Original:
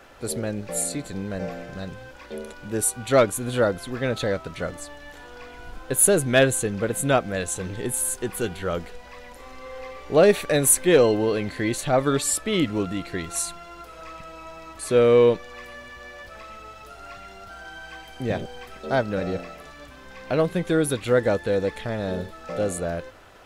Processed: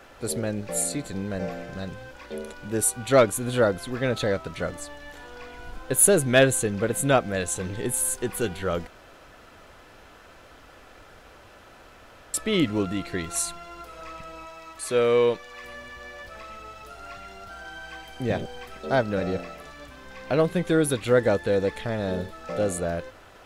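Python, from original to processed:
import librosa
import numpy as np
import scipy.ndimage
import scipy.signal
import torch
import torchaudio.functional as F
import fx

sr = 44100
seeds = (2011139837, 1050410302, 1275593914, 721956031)

y = fx.low_shelf(x, sr, hz=490.0, db=-8.5, at=(14.45, 15.64))
y = fx.edit(y, sr, fx.room_tone_fill(start_s=8.87, length_s=3.47), tone=tone)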